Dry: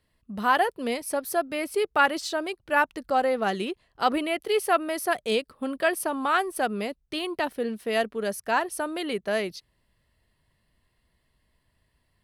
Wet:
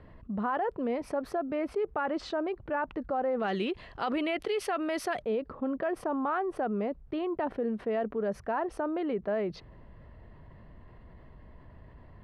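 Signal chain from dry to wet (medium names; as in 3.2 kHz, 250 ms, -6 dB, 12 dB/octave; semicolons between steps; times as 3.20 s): low-pass 1.2 kHz 12 dB/octave, from 3.40 s 3.4 kHz, from 5.22 s 1.1 kHz; peak limiter -21 dBFS, peak gain reduction 11 dB; level flattener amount 50%; trim -3 dB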